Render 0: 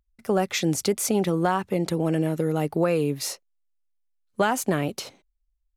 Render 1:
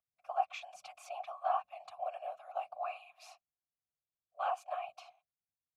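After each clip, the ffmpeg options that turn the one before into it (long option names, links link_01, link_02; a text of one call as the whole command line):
ffmpeg -i in.wav -filter_complex "[0:a]afftfilt=real='re*(1-between(b*sr/4096,110,620))':imag='im*(1-between(b*sr/4096,110,620))':win_size=4096:overlap=0.75,afftfilt=real='hypot(re,im)*cos(2*PI*random(0))':imag='hypot(re,im)*sin(2*PI*random(1))':win_size=512:overlap=0.75,asplit=3[link_01][link_02][link_03];[link_01]bandpass=frequency=730:width_type=q:width=8,volume=0dB[link_04];[link_02]bandpass=frequency=1090:width_type=q:width=8,volume=-6dB[link_05];[link_03]bandpass=frequency=2440:width_type=q:width=8,volume=-9dB[link_06];[link_04][link_05][link_06]amix=inputs=3:normalize=0,volume=5dB" out.wav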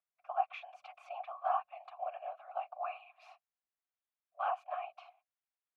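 ffmpeg -i in.wav -filter_complex "[0:a]acrossover=split=580 3000:gain=0.158 1 0.0631[link_01][link_02][link_03];[link_01][link_02][link_03]amix=inputs=3:normalize=0,volume=2dB" out.wav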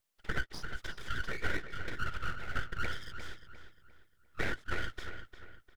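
ffmpeg -i in.wav -filter_complex "[0:a]acompressor=threshold=-42dB:ratio=6,aeval=exprs='abs(val(0))':channel_layout=same,asplit=2[link_01][link_02];[link_02]adelay=351,lowpass=frequency=3700:poles=1,volume=-9.5dB,asplit=2[link_03][link_04];[link_04]adelay=351,lowpass=frequency=3700:poles=1,volume=0.38,asplit=2[link_05][link_06];[link_06]adelay=351,lowpass=frequency=3700:poles=1,volume=0.38,asplit=2[link_07][link_08];[link_08]adelay=351,lowpass=frequency=3700:poles=1,volume=0.38[link_09];[link_03][link_05][link_07][link_09]amix=inputs=4:normalize=0[link_10];[link_01][link_10]amix=inputs=2:normalize=0,volume=13dB" out.wav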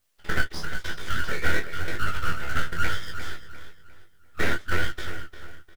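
ffmpeg -i in.wav -filter_complex "[0:a]asplit=2[link_01][link_02];[link_02]acrusher=bits=2:mode=log:mix=0:aa=0.000001,volume=-7.5dB[link_03];[link_01][link_03]amix=inputs=2:normalize=0,flanger=delay=20:depth=6.5:speed=1,asplit=2[link_04][link_05];[link_05]adelay=12,volume=-5dB[link_06];[link_04][link_06]amix=inputs=2:normalize=0,volume=8dB" out.wav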